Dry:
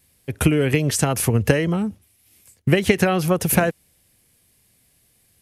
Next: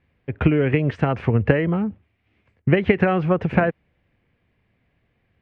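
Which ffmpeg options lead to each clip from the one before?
-af "lowpass=f=2.4k:w=0.5412,lowpass=f=2.4k:w=1.3066"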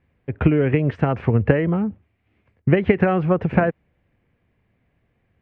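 -af "highshelf=f=2.9k:g=-9.5,volume=1dB"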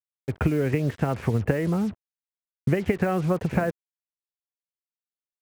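-af "acompressor=threshold=-24dB:ratio=2,acrusher=bits=6:mix=0:aa=0.5"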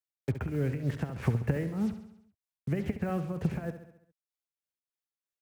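-filter_complex "[0:a]acrossover=split=210[a][b];[b]acompressor=threshold=-31dB:ratio=6[c];[a][c]amix=inputs=2:normalize=0,tremolo=f=3.2:d=0.74,aecho=1:1:68|136|204|272|340|408:0.282|0.158|0.0884|0.0495|0.0277|0.0155"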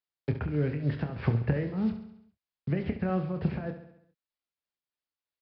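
-filter_complex "[0:a]asplit=2[a][b];[b]adelay=27,volume=-9dB[c];[a][c]amix=inputs=2:normalize=0,aresample=11025,aresample=44100,volume=1dB"

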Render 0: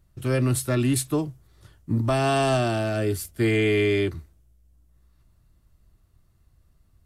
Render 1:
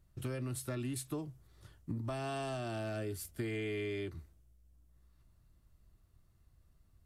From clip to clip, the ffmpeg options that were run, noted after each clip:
-af "acompressor=threshold=-30dB:ratio=6,volume=-6dB"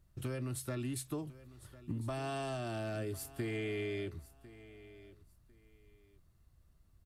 -af "aecho=1:1:1050|2100:0.126|0.0302"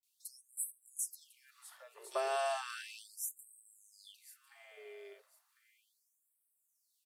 -filter_complex "[0:a]acrossover=split=200|3000[a][b][c];[c]adelay=30[d];[b]adelay=70[e];[a][e][d]amix=inputs=3:normalize=0,afftfilt=real='re*gte(b*sr/1024,360*pow(7900/360,0.5+0.5*sin(2*PI*0.35*pts/sr)))':imag='im*gte(b*sr/1024,360*pow(7900/360,0.5+0.5*sin(2*PI*0.35*pts/sr)))':win_size=1024:overlap=0.75,volume=6.5dB"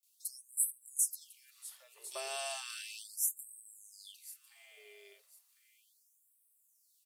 -af "aexciter=amount=4.4:drive=4.3:freq=2.2k,volume=-8.5dB"

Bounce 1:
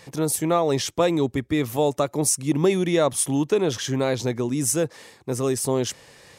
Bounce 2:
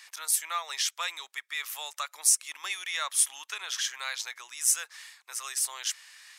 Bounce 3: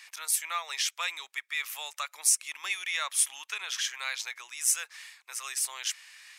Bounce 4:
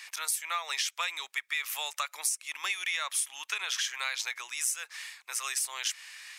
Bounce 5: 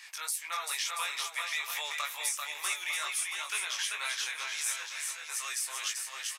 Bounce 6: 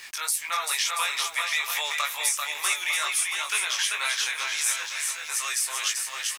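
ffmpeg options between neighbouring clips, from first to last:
-af "highpass=f=1.3k:w=0.5412,highpass=f=1.3k:w=1.3066"
-af "equalizer=f=2.4k:w=2.6:g=5.5,volume=-1.5dB"
-af "acompressor=threshold=-32dB:ratio=10,volume=4.5dB"
-filter_complex "[0:a]flanger=delay=18:depth=3.3:speed=2.2,asplit=2[a][b];[b]aecho=0:1:390|682.5|901.9|1066|1190:0.631|0.398|0.251|0.158|0.1[c];[a][c]amix=inputs=2:normalize=0"
-af "aeval=exprs='val(0)*gte(abs(val(0)),0.00188)':c=same,volume=7.5dB"

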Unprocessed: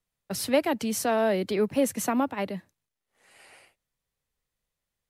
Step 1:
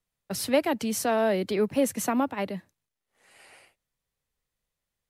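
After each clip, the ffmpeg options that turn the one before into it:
-af anull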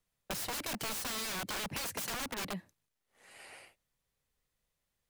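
-af "aeval=exprs='(mod(23.7*val(0)+1,2)-1)/23.7':c=same,acompressor=threshold=-37dB:ratio=6,volume=1dB"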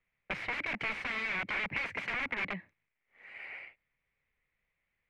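-af "lowpass=f=2.2k:t=q:w=6,volume=-1.5dB"

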